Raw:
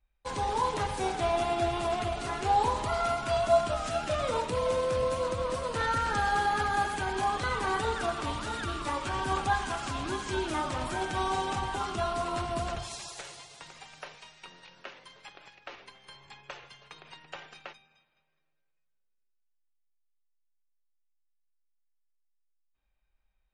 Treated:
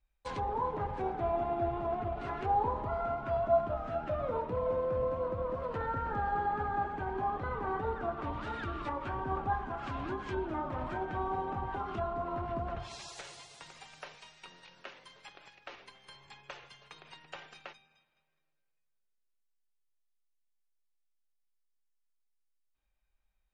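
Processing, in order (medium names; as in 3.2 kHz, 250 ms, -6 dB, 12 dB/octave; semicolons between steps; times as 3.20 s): low-pass that closes with the level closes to 1.1 kHz, closed at -28 dBFS; trim -3 dB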